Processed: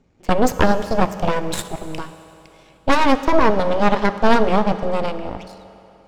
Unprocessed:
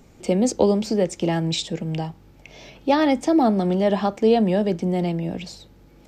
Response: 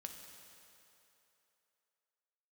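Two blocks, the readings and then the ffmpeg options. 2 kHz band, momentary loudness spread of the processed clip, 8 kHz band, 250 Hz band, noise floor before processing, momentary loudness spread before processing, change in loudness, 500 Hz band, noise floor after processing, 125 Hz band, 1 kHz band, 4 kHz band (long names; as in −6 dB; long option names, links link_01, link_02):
+10.0 dB, 14 LU, 0.0 dB, −1.0 dB, −51 dBFS, 11 LU, +2.5 dB, +1.5 dB, −51 dBFS, −1.5 dB, +7.5 dB, +1.0 dB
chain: -filter_complex "[0:a]adynamicsmooth=sensitivity=7:basefreq=5400,aeval=exprs='0.596*(cos(1*acos(clip(val(0)/0.596,-1,1)))-cos(1*PI/2))+0.133*(cos(3*acos(clip(val(0)/0.596,-1,1)))-cos(3*PI/2))+0.237*(cos(6*acos(clip(val(0)/0.596,-1,1)))-cos(6*PI/2))':channel_layout=same,asplit=2[link_01][link_02];[1:a]atrim=start_sample=2205[link_03];[link_02][link_03]afir=irnorm=-1:irlink=0,volume=3dB[link_04];[link_01][link_04]amix=inputs=2:normalize=0,volume=-4dB"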